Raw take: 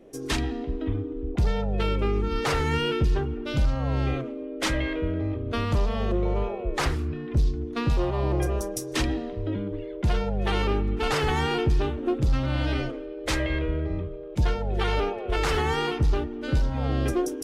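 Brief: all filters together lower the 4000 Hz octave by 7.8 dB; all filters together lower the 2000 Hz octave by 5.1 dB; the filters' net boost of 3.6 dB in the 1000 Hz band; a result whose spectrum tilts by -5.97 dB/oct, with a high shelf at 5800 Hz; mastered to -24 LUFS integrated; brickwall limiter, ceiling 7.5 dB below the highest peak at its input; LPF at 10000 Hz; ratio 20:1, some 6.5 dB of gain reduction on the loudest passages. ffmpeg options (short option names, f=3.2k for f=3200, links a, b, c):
-af "lowpass=10k,equalizer=f=1k:t=o:g=7,equalizer=f=2k:t=o:g=-7,equalizer=f=4k:t=o:g=-6,highshelf=f=5.8k:g=-6.5,acompressor=threshold=-24dB:ratio=20,volume=8.5dB,alimiter=limit=-14.5dB:level=0:latency=1"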